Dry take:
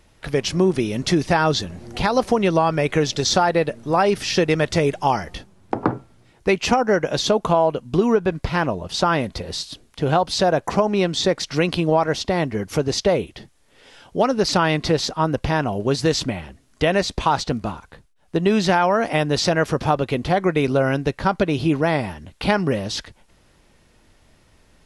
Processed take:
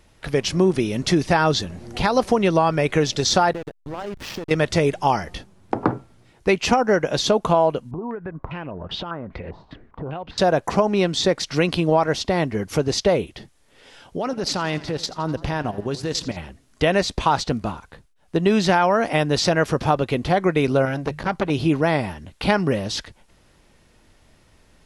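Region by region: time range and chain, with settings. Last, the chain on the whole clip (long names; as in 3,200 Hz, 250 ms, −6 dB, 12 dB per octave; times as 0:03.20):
0:03.53–0:04.51: downward compressor 4 to 1, threshold −26 dBFS + slack as between gear wheels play −23.5 dBFS
0:07.91–0:10.38: tilt shelving filter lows +5 dB, about 1,200 Hz + downward compressor 5 to 1, threshold −30 dBFS + low-pass on a step sequencer 5 Hz 910–3,200 Hz
0:14.17–0:16.37: output level in coarse steps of 12 dB + feedback echo with a swinging delay time 85 ms, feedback 62%, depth 93 cents, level −18.5 dB
0:20.85–0:21.50: mains-hum notches 50/100/150 Hz + saturating transformer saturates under 970 Hz
whole clip: no processing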